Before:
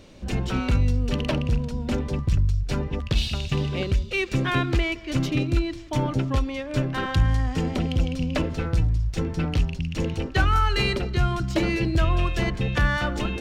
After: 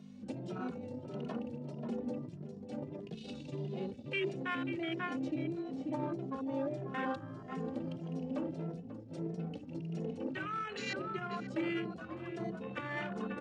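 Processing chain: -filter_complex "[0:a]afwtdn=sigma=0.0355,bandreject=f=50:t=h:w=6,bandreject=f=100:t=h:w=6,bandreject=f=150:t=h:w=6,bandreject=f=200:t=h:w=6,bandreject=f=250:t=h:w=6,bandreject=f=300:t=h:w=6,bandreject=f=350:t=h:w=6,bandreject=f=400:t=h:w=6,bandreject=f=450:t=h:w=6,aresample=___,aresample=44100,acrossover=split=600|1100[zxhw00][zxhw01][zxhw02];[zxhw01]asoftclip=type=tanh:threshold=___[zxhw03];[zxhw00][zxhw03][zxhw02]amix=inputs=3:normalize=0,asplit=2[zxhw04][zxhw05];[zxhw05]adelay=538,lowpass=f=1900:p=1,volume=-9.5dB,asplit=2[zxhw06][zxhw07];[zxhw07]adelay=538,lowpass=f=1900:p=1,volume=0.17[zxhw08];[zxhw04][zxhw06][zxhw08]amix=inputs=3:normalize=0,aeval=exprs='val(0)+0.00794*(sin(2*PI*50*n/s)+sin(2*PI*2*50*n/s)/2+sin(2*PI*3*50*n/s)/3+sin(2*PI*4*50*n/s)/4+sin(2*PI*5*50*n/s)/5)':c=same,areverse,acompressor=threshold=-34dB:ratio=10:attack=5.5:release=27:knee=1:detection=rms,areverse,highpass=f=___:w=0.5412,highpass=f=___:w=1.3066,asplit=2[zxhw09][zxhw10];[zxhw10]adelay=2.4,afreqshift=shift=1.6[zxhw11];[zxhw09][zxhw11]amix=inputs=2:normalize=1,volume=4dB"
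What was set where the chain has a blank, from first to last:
22050, -39dB, 170, 170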